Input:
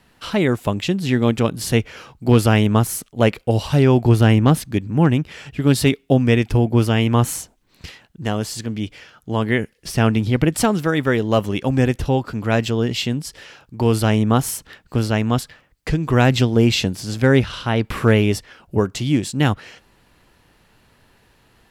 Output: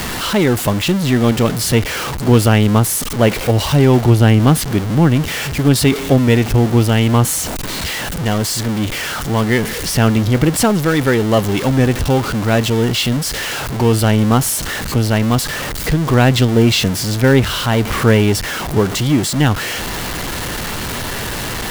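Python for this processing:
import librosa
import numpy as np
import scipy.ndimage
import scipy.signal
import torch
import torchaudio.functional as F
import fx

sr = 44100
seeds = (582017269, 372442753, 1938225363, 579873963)

y = x + 0.5 * 10.0 ** (-18.5 / 20.0) * np.sign(x)
y = fx.notch(y, sr, hz=2500.0, q=24.0)
y = F.gain(torch.from_numpy(y), 1.5).numpy()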